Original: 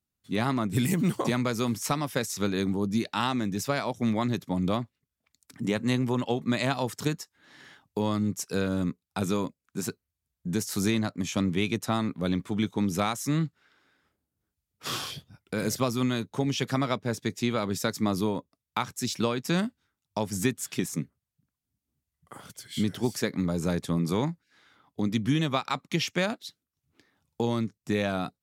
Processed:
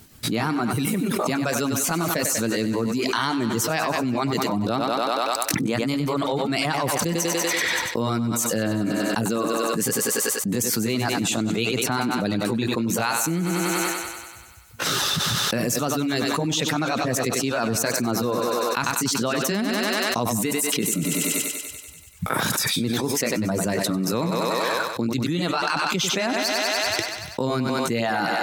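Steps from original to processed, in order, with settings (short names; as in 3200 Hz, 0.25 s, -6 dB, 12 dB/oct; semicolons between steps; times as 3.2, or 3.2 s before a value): delay-line pitch shifter +2 st; reverb removal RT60 1.4 s; on a send: thinning echo 96 ms, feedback 67%, high-pass 280 Hz, level -12 dB; on the sum: fast leveller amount 100%; gain -1.5 dB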